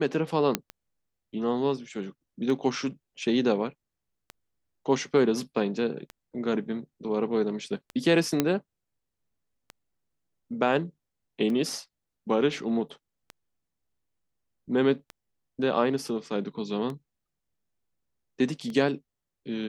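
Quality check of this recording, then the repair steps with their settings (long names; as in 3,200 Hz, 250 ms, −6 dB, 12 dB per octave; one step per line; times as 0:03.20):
scratch tick 33 1/3 rpm −23 dBFS
0:00.55: click −7 dBFS
0:08.40: click −8 dBFS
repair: click removal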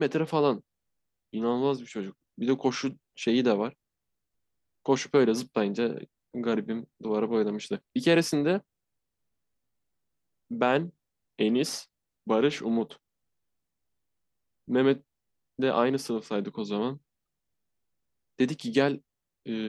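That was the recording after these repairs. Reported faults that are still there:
none of them is left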